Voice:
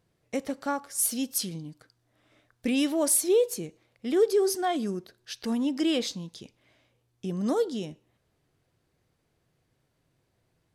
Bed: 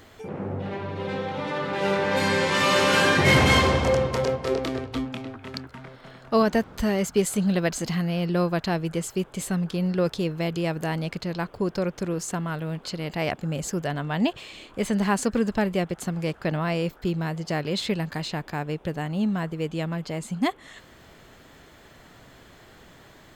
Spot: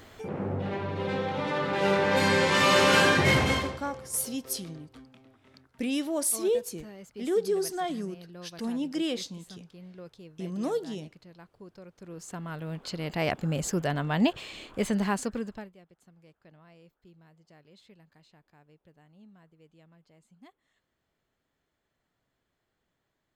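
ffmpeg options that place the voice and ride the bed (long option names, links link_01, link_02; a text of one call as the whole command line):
ffmpeg -i stem1.wav -i stem2.wav -filter_complex "[0:a]adelay=3150,volume=-4dB[link_01];[1:a]volume=21dB,afade=type=out:start_time=2.97:duration=0.83:silence=0.0841395,afade=type=in:start_time=11.96:duration=1.43:silence=0.0841395,afade=type=out:start_time=14.66:duration=1.06:silence=0.0334965[link_02];[link_01][link_02]amix=inputs=2:normalize=0" out.wav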